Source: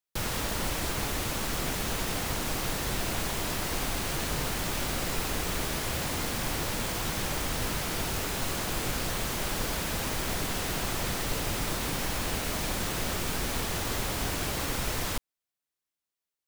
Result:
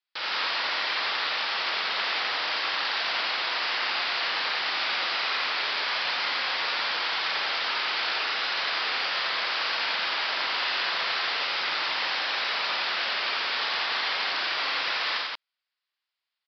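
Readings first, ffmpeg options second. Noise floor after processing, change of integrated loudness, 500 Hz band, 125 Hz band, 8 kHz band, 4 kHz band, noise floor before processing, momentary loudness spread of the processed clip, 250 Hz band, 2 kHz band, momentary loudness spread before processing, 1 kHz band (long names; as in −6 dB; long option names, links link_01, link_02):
below −85 dBFS, +4.5 dB, −3.0 dB, below −25 dB, −18.0 dB, +9.0 dB, below −85 dBFS, 1 LU, −14.5 dB, +9.0 dB, 0 LU, +5.5 dB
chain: -filter_complex "[0:a]aresample=11025,aresample=44100,highpass=1100,asplit=2[link_01][link_02];[link_02]aecho=0:1:49.56|87.46|174.9:0.708|0.794|0.891[link_03];[link_01][link_03]amix=inputs=2:normalize=0,volume=5dB"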